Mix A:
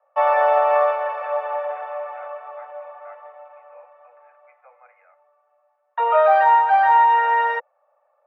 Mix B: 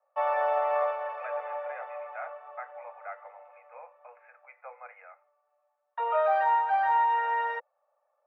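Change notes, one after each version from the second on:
speech +6.5 dB
background −10.0 dB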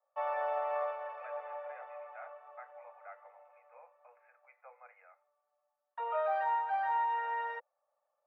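speech −10.0 dB
background −7.5 dB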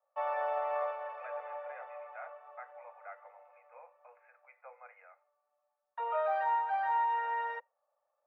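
reverb: on, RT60 0.35 s

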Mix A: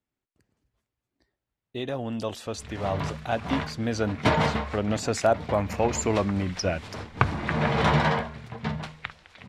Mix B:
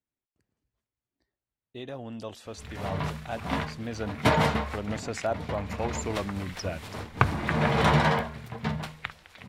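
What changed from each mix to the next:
speech −7.5 dB
background: remove low-pass filter 7,100 Hz 12 dB per octave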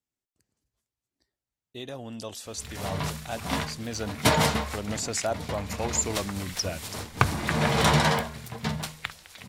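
master: add bass and treble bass 0 dB, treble +14 dB

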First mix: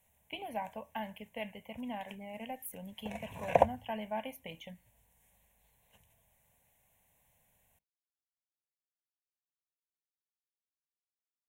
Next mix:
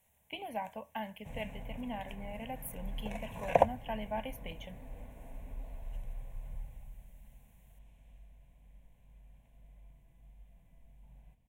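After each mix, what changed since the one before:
first sound: unmuted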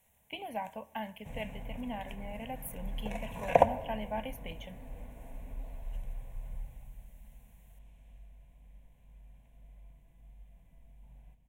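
reverb: on, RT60 1.6 s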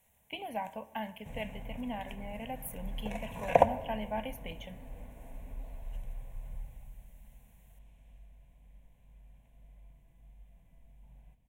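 speech: send +6.0 dB
first sound: send −8.5 dB

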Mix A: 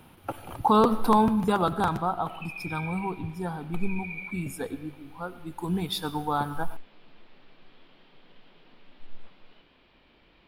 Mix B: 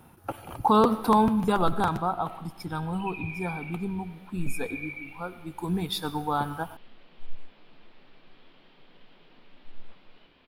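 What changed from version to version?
background: entry +0.65 s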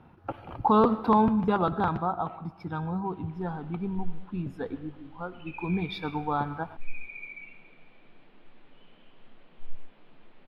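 background: entry +2.40 s
master: add high-frequency loss of the air 290 metres

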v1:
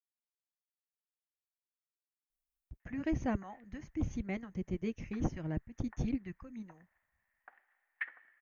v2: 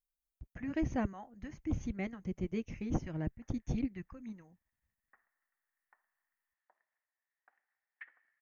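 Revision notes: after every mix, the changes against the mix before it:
speech: entry −2.30 s
background −12.0 dB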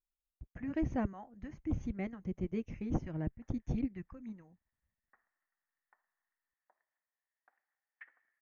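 master: add high-shelf EQ 2,600 Hz −9.5 dB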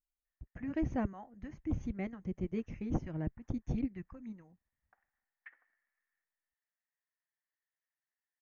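background: entry −2.55 s

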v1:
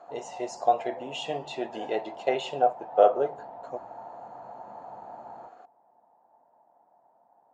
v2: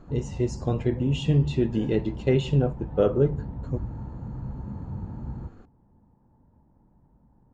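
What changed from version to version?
master: remove high-pass with resonance 700 Hz, resonance Q 7.8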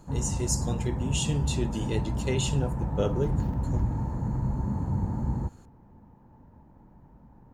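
speech −9.0 dB
background +6.0 dB
master: remove head-to-tape spacing loss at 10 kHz 37 dB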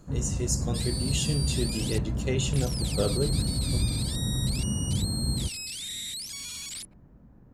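first sound: add parametric band 890 Hz −15 dB 0.32 octaves
second sound: unmuted

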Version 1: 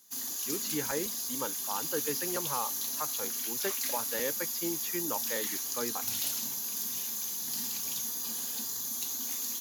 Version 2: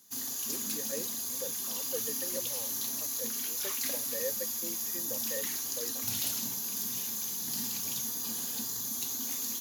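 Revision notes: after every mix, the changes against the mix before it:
speech: add formant resonators in series e
master: add low-shelf EQ 290 Hz +8 dB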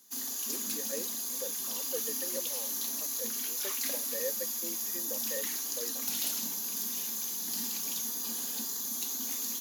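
master: add high-pass filter 200 Hz 24 dB per octave

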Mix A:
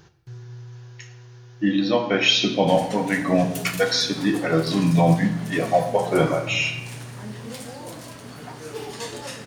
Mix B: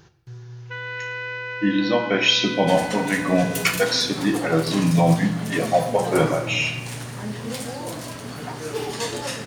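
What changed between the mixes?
first sound: unmuted
second sound +5.5 dB

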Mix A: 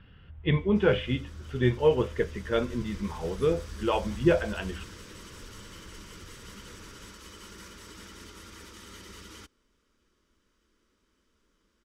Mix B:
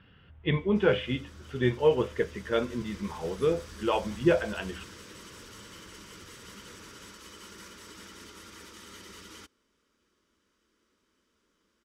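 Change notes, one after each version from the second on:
master: add high-pass filter 150 Hz 6 dB per octave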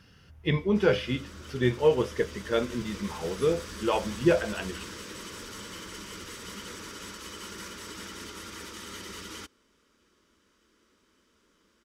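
speech: remove Chebyshev low-pass filter 3,400 Hz, order 4
background +6.5 dB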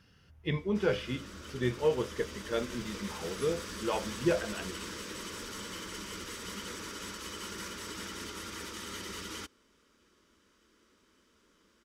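speech −6.0 dB

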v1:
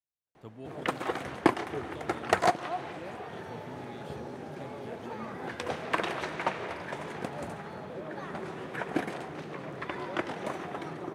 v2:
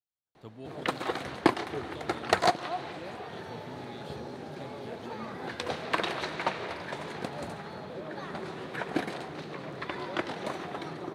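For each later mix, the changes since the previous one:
master: add parametric band 4,100 Hz +8.5 dB 0.52 octaves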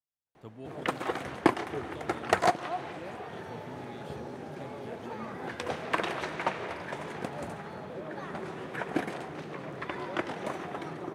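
master: add parametric band 4,100 Hz −8.5 dB 0.52 octaves

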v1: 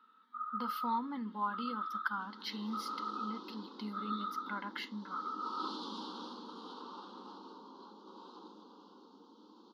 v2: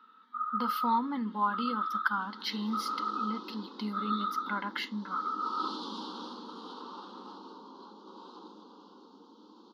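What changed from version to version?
speech +6.5 dB
background +3.5 dB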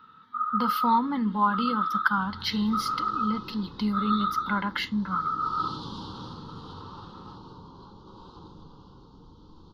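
speech +5.5 dB
master: remove linear-phase brick-wall high-pass 200 Hz

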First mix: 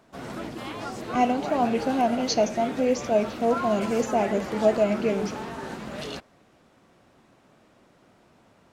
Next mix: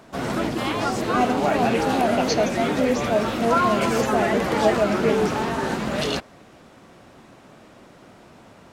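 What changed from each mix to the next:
background +10.5 dB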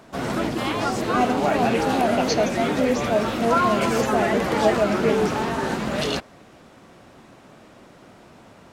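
nothing changed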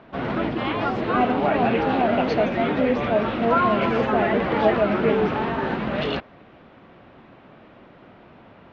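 master: add low-pass filter 3,300 Hz 24 dB per octave

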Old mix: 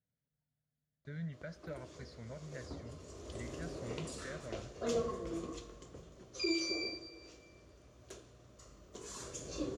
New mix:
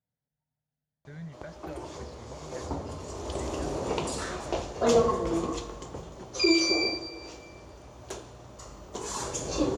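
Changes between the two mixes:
background +11.5 dB
master: add parametric band 860 Hz +13.5 dB 0.41 octaves

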